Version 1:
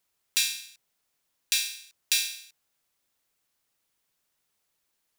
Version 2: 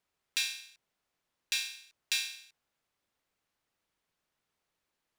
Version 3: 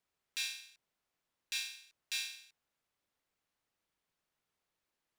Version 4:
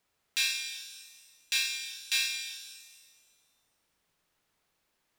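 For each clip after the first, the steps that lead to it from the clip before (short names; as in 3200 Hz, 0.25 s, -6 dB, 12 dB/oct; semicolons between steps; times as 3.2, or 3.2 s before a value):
LPF 2400 Hz 6 dB/oct
limiter -21 dBFS, peak gain reduction 6.5 dB; gain -3.5 dB
shimmer reverb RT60 1.6 s, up +7 st, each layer -8 dB, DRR 5.5 dB; gain +8.5 dB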